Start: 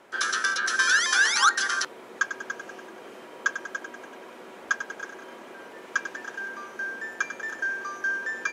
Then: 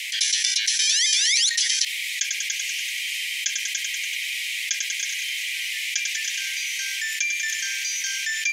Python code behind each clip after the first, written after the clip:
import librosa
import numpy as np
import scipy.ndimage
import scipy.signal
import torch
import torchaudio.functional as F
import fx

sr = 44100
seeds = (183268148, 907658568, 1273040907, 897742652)

y = scipy.signal.sosfilt(scipy.signal.butter(16, 2000.0, 'highpass', fs=sr, output='sos'), x)
y = fx.env_flatten(y, sr, amount_pct=70)
y = F.gain(torch.from_numpy(y), 5.0).numpy()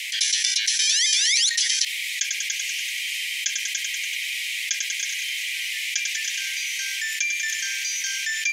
y = x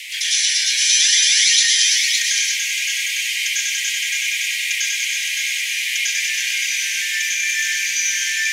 y = x + 10.0 ** (-4.0 / 20.0) * np.pad(x, (int(564 * sr / 1000.0), 0))[:len(x)]
y = fx.rev_plate(y, sr, seeds[0], rt60_s=0.63, hf_ratio=0.65, predelay_ms=90, drr_db=-7.0)
y = F.gain(torch.from_numpy(y), -2.0).numpy()